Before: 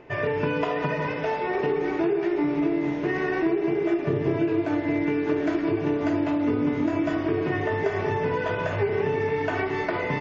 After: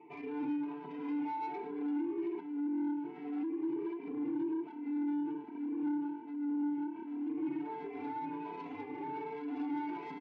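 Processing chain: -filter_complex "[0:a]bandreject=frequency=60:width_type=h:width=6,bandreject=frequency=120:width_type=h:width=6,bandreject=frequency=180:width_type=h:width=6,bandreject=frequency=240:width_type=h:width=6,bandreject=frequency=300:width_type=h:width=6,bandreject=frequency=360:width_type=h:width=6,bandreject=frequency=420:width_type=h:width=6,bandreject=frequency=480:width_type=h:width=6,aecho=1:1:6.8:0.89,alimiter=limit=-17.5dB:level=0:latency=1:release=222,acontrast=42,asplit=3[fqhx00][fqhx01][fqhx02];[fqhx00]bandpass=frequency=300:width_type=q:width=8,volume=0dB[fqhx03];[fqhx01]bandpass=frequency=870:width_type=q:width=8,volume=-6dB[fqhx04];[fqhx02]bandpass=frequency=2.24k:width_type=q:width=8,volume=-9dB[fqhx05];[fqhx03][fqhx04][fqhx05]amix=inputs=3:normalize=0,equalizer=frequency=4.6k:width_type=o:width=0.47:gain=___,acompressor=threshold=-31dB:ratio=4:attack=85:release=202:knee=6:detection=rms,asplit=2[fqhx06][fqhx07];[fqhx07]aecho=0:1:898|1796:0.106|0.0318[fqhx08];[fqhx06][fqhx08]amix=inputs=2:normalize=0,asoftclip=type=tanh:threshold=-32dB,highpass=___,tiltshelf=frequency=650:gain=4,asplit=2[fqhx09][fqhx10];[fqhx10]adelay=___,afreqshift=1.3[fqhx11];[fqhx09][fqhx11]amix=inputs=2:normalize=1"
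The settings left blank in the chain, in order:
-2.5, 210, 2.7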